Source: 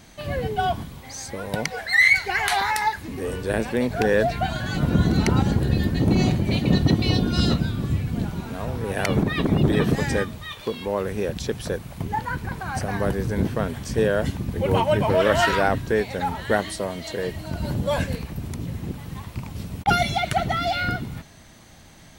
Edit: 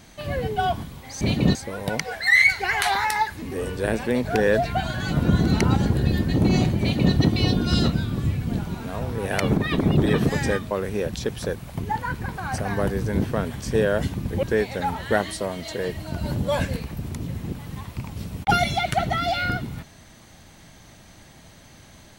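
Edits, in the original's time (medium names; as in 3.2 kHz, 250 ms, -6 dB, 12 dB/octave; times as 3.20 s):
6.46–6.80 s: copy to 1.21 s
10.37–10.94 s: delete
14.66–15.82 s: delete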